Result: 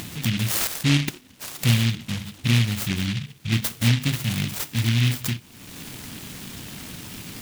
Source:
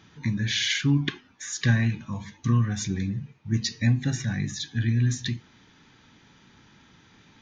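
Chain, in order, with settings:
0:00.67–0:02.67: low-pass filter 1,500 Hz 12 dB per octave
upward compression, threshold −25 dBFS
short delay modulated by noise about 2,700 Hz, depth 0.35 ms
level +2.5 dB

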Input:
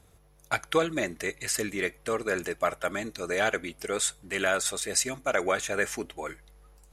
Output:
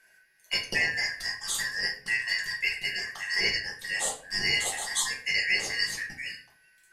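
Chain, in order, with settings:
band-splitting scrambler in four parts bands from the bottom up 3142
rectangular room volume 37 cubic metres, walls mixed, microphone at 0.92 metres
level −5 dB

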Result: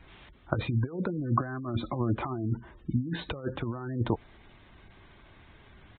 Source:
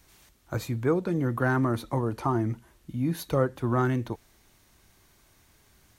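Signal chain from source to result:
0:01.17–0:02.40: notch comb filter 460 Hz
compressor whose output falls as the input rises −31 dBFS, ratio −0.5
gate on every frequency bin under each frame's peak −25 dB strong
downsampling to 8,000 Hz
level +2.5 dB

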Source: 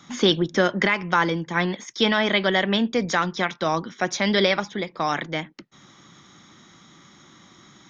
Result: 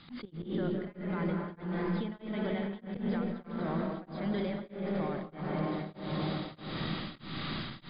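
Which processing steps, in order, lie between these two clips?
spike at every zero crossing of −19.5 dBFS
convolution reverb RT60 3.5 s, pre-delay 120 ms, DRR −2 dB
downward compressor 6 to 1, threshold −20 dBFS, peak gain reduction 8 dB
linear-phase brick-wall low-pass 5,000 Hz
low-shelf EQ 300 Hz +7.5 dB
output level in coarse steps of 18 dB
spectral tilt −3 dB per octave
volume swells 127 ms
tremolo along a rectified sine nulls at 1.6 Hz

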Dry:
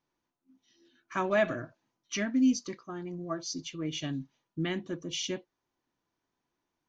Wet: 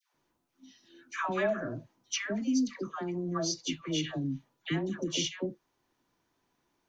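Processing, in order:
downward compressor 2.5 to 1, threshold −39 dBFS, peak gain reduction 12 dB
all-pass dispersion lows, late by 147 ms, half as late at 880 Hz
level +7.5 dB

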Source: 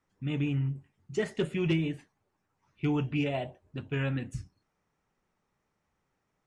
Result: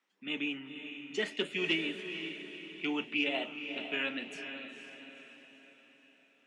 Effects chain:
Butterworth high-pass 200 Hz 48 dB per octave
parametric band 3,000 Hz +13.5 dB 1.6 octaves
on a send: feedback delay with all-pass diffusion 487 ms, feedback 48%, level −8 dB
on the sum: level −5.5 dB

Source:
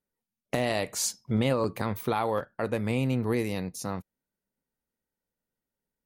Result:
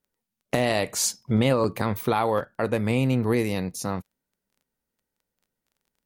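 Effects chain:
surface crackle 13 per second −56 dBFS
level +4.5 dB

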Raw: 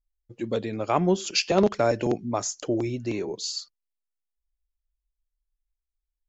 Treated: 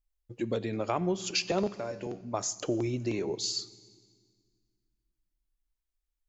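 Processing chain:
downward compressor 3 to 1, threshold −28 dBFS, peak gain reduction 10.5 dB
0:01.72–0:02.34: tuned comb filter 95 Hz, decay 0.35 s, harmonics all, mix 70%
convolution reverb RT60 1.8 s, pre-delay 4 ms, DRR 16.5 dB

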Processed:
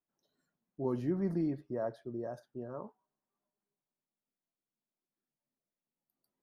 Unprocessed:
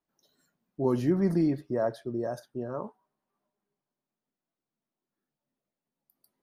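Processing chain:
high-shelf EQ 3,300 Hz −9 dB
level −7.5 dB

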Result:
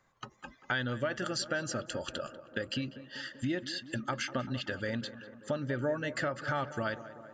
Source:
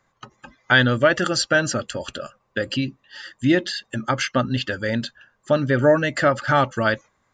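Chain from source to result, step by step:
downward compressor 3 to 1, threshold −30 dBFS, peak gain reduction 14.5 dB
on a send: tape delay 194 ms, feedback 80%, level −13 dB, low-pass 1,700 Hz
on the sum: level −4 dB

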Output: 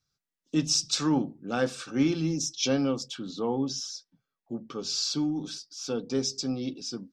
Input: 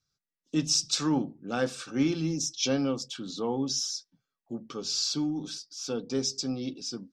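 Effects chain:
high-shelf EQ 4,900 Hz −2.5 dB, from 0:03.15 −11 dB, from 0:04.79 −3.5 dB
level +1.5 dB

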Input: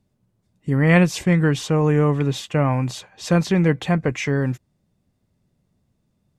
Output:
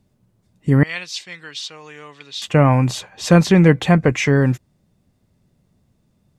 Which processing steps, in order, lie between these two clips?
0:00.83–0:02.42: resonant band-pass 4,200 Hz, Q 2.5
level +6 dB

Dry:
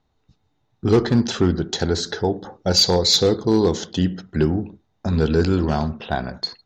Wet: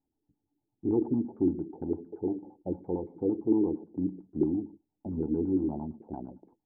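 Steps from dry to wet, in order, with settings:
auto-filter low-pass saw down 8.8 Hz 300–1,800 Hz
formant resonators in series u
level −5 dB

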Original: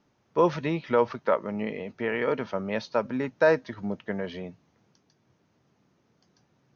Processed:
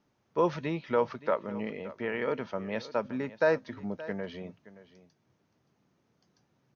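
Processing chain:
single-tap delay 573 ms −17 dB
level −4.5 dB

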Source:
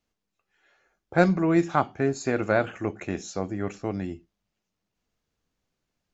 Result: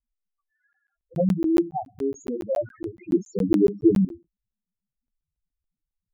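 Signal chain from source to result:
spectral peaks only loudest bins 2
0:03.12–0:04.05: low shelf with overshoot 510 Hz +10.5 dB, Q 3
regular buffer underruns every 0.14 s, samples 512, zero, from 0:00.73
level +3 dB

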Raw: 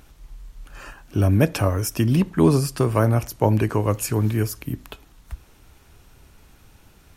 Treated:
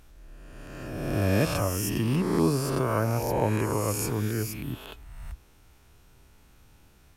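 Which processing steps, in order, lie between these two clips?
peak hold with a rise ahead of every peak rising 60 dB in 1.64 s
level −9 dB

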